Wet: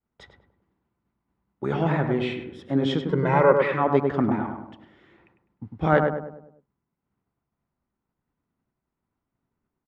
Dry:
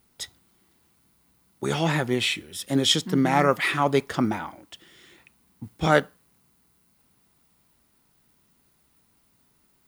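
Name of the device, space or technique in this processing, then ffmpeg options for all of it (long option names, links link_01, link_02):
hearing-loss simulation: -filter_complex "[0:a]lowpass=1600,agate=range=-33dB:threshold=-60dB:ratio=3:detection=peak,asettb=1/sr,asplit=3[link_01][link_02][link_03];[link_01]atrim=end=3.104[link_04];[link_02]atrim=start=3.1:end=3.52,asetpts=PTS-STARTPTS,afade=type=in:duration=0.004:curve=qsin,afade=type=out:start_time=0.416:duration=0.004:curve=qsin,aecho=1:1:2:0.96,atrim=end_sample=18522[link_05];[link_03]atrim=start=3.516[link_06];[link_04][link_05]acrossfade=duration=0.004:curve1=hsin:curve2=qsin[link_07];[link_07][link_06]acrossfade=duration=0.004:curve1=qsin:curve2=hsin,asplit=2[link_08][link_09];[link_09]adelay=101,lowpass=frequency=1300:poles=1,volume=-3.5dB,asplit=2[link_10][link_11];[link_11]adelay=101,lowpass=frequency=1300:poles=1,volume=0.48,asplit=2[link_12][link_13];[link_13]adelay=101,lowpass=frequency=1300:poles=1,volume=0.48,asplit=2[link_14][link_15];[link_15]adelay=101,lowpass=frequency=1300:poles=1,volume=0.48,asplit=2[link_16][link_17];[link_17]adelay=101,lowpass=frequency=1300:poles=1,volume=0.48,asplit=2[link_18][link_19];[link_19]adelay=101,lowpass=frequency=1300:poles=1,volume=0.48[link_20];[link_08][link_10][link_12][link_14][link_16][link_18][link_20]amix=inputs=7:normalize=0"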